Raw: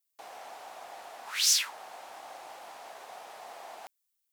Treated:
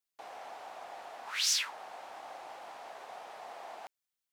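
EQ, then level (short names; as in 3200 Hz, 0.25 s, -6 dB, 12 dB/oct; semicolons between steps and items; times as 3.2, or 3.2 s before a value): LPF 3600 Hz 6 dB/oct; 0.0 dB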